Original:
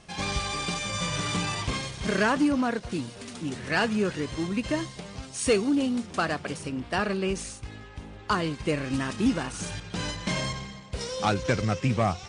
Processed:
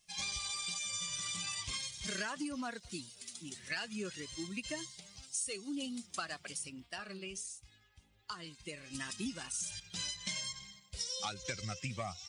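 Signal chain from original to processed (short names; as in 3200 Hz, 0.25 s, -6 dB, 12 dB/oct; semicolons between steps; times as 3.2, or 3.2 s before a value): per-bin expansion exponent 1.5; pre-emphasis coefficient 0.9; compressor 16:1, threshold -44 dBFS, peak gain reduction 16 dB; 6.86–8.95 flange 1.3 Hz, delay 5.7 ms, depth 6.4 ms, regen +83%; gain +9 dB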